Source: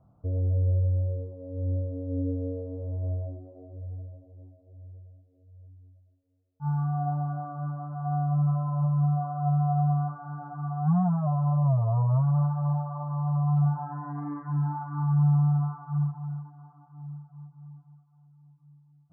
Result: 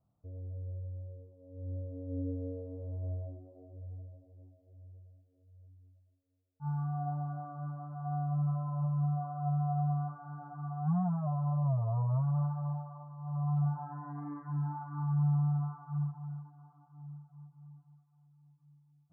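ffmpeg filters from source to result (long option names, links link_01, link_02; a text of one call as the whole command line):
ffmpeg -i in.wav -af "volume=4dB,afade=type=in:start_time=1.37:duration=0.77:silence=0.334965,afade=type=out:start_time=12.51:duration=0.66:silence=0.281838,afade=type=in:start_time=13.17:duration=0.27:silence=0.281838" out.wav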